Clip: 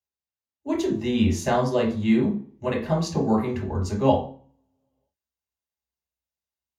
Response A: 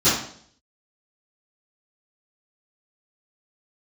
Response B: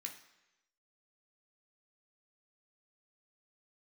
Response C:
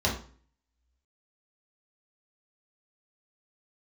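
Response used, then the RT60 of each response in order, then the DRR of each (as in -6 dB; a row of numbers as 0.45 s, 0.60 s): C; 0.60 s, 1.0 s, 0.45 s; -19.5 dB, 1.0 dB, -3.5 dB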